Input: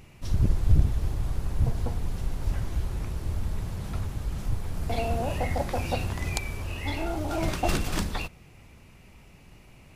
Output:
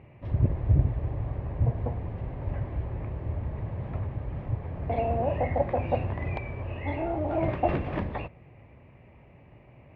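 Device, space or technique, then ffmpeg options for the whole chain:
bass cabinet: -af "highpass=69,equalizer=f=120:t=q:w=4:g=4,equalizer=f=190:t=q:w=4:g=-5,equalizer=f=580:t=q:w=4:g=6,equalizer=f=1.4k:t=q:w=4:g=-10,lowpass=f=2.1k:w=0.5412,lowpass=f=2.1k:w=1.3066,volume=1dB"

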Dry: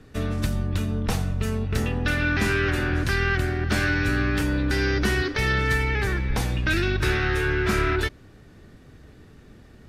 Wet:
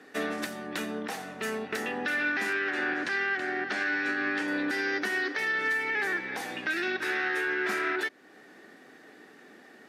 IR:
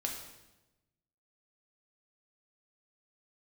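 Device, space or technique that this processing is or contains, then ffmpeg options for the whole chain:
laptop speaker: -filter_complex "[0:a]highpass=f=260:w=0.5412,highpass=f=260:w=1.3066,equalizer=f=770:t=o:w=0.25:g=7,equalizer=f=1.8k:t=o:w=0.53:g=8.5,alimiter=limit=-20.5dB:level=0:latency=1:release=365,asettb=1/sr,asplit=3[a][b][c];[a]atrim=end=2.534[d];[b]atrim=start=2.53:end=4.48,asetpts=PTS-STARTPTS,afade=t=in:d=0.004:c=qsin,afade=t=out:st=1.946:d=0.004:c=qsin,lowpass=6.1k[e];[c]atrim=start=4.476[f];[d][e]acrossfade=d=0.004:c1=hsin:c2=qsin[g];[g][f]acrossfade=d=0.004:c1=qsin:c2=hsin"

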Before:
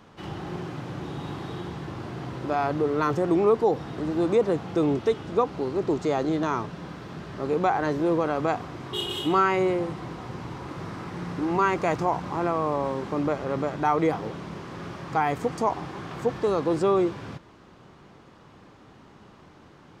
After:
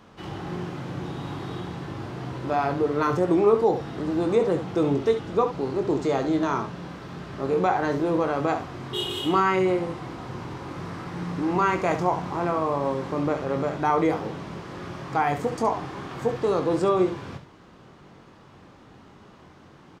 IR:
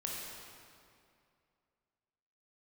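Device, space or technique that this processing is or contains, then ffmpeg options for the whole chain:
slapback doubling: -filter_complex "[0:a]asplit=3[a][b][c];[b]adelay=22,volume=-8dB[d];[c]adelay=69,volume=-9.5dB[e];[a][d][e]amix=inputs=3:normalize=0"

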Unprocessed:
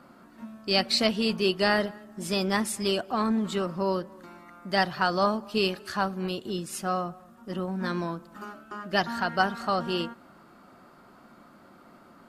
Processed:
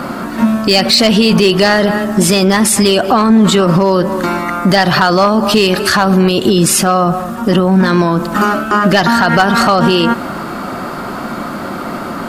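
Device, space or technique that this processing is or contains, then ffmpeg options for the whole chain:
loud club master: -af "acompressor=threshold=-29dB:ratio=2,asoftclip=type=hard:threshold=-21.5dB,alimiter=level_in=32.5dB:limit=-1dB:release=50:level=0:latency=1,volume=-1dB"

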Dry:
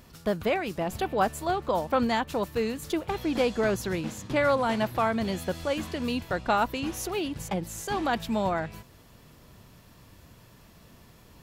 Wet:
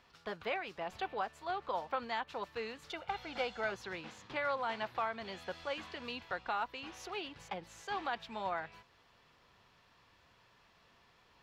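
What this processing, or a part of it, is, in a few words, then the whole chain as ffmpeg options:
DJ mixer with the lows and highs turned down: -filter_complex "[0:a]acrossover=split=580 5100:gain=0.178 1 0.0708[a][b][c];[a][b][c]amix=inputs=3:normalize=0,alimiter=limit=-19.5dB:level=0:latency=1:release=416,equalizer=f=400:w=7.9:g=3,bandreject=f=620:w=12,asettb=1/sr,asplit=3[d][e][f];[d]atrim=end=2.894[g];[e]atrim=start=2.89:end=3.72,asetpts=PTS-STARTPTS,afade=t=in:d=0.004:c=qsin,afade=t=out:st=0.826:d=0.004:c=qsin,aecho=1:1:1.4:0.5,atrim=end_sample=36603[h];[f]atrim=start=3.716[i];[g][h]acrossfade=d=0.004:c1=hsin:c2=qsin[j];[j][i]acrossfade=d=0.004:c1=qsin:c2=hsin,volume=-5.5dB"

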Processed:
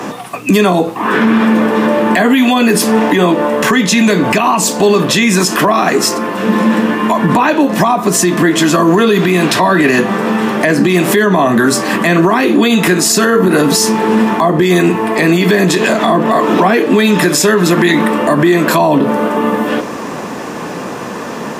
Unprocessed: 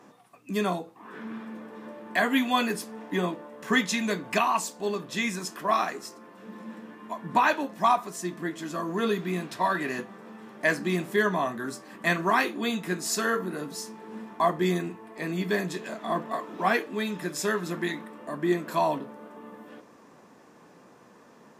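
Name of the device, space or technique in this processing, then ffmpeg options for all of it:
mastering chain: -filter_complex "[0:a]equalizer=f=2.8k:t=o:w=0.48:g=3,acrossover=split=230|490[a][b][c];[a]acompressor=threshold=-41dB:ratio=4[d];[b]acompressor=threshold=-31dB:ratio=4[e];[c]acompressor=threshold=-34dB:ratio=4[f];[d][e][f]amix=inputs=3:normalize=0,acompressor=threshold=-35dB:ratio=2.5,alimiter=level_in=32.5dB:limit=-1dB:release=50:level=0:latency=1,volume=-1dB"

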